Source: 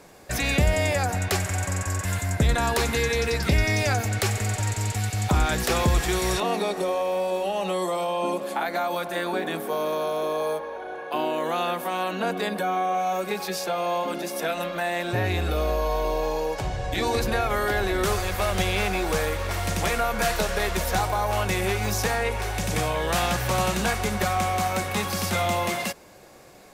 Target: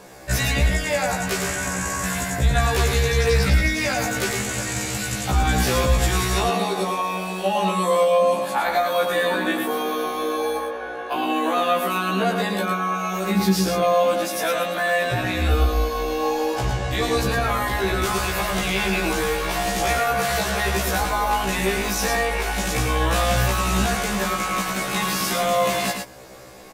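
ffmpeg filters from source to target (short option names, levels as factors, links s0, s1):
-filter_complex "[0:a]asettb=1/sr,asplit=3[s0][s1][s2];[s0]atrim=end=13.314[s3];[s1]atrim=start=13.31:end=13.82,asetpts=PTS-STARTPTS,afade=t=in:d=0.004:c=qsin,afade=t=out:st=0.506:d=0.004:c=qsin,lowshelf=f=390:t=q:w=1.5:g=11[s4];[s2]atrim=start=13.816[s5];[s3][s4]acrossfade=d=0.004:c1=hsin:c2=qsin[s6];[s6][s5]acrossfade=d=0.004:c1=qsin:c2=hsin,alimiter=limit=0.112:level=0:latency=1:release=18,aecho=1:1:109:0.562,afftfilt=real='re*1.73*eq(mod(b,3),0)':imag='im*1.73*eq(mod(b,3),0)':win_size=2048:overlap=0.75,volume=2.51"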